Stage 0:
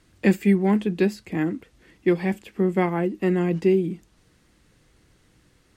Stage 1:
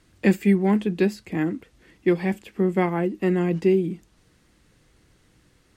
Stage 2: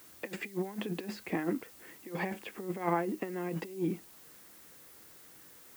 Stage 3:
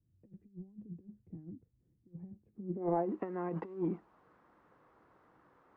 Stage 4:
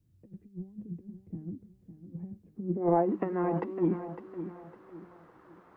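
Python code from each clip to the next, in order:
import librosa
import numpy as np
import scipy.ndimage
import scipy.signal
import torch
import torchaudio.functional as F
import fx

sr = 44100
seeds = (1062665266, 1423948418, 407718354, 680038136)

y1 = x
y2 = fx.over_compress(y1, sr, threshold_db=-26.0, ratio=-0.5)
y2 = fx.bandpass_q(y2, sr, hz=990.0, q=0.62)
y2 = fx.dmg_noise_colour(y2, sr, seeds[0], colour='blue', level_db=-55.0)
y2 = y2 * librosa.db_to_amplitude(-1.0)
y3 = fx.leveller(y2, sr, passes=1)
y3 = fx.filter_sweep_lowpass(y3, sr, from_hz=110.0, to_hz=1100.0, start_s=2.47, end_s=3.11, q=2.0)
y3 = y3 * librosa.db_to_amplitude(-6.0)
y4 = fx.echo_feedback(y3, sr, ms=556, feedback_pct=35, wet_db=-11.0)
y4 = y4 * librosa.db_to_amplitude(7.0)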